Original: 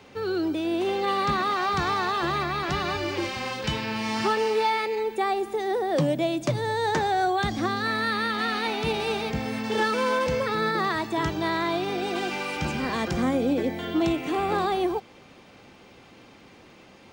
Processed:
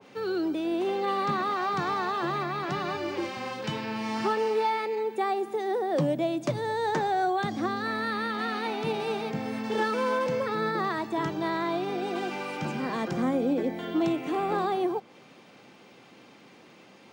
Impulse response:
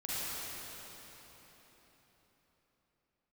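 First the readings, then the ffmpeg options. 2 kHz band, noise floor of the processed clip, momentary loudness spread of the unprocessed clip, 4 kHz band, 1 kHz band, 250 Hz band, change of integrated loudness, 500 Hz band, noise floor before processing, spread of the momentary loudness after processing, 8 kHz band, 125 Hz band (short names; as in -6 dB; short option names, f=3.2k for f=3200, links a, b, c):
-5.0 dB, -54 dBFS, 5 LU, -7.0 dB, -2.5 dB, -2.0 dB, -3.0 dB, -2.0 dB, -51 dBFS, 5 LU, -7.5 dB, -4.5 dB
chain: -af "highpass=f=130:w=0.5412,highpass=f=130:w=1.3066,adynamicequalizer=threshold=0.01:dfrequency=1700:dqfactor=0.7:tfrequency=1700:tqfactor=0.7:attack=5:release=100:ratio=0.375:range=3:mode=cutabove:tftype=highshelf,volume=-2dB"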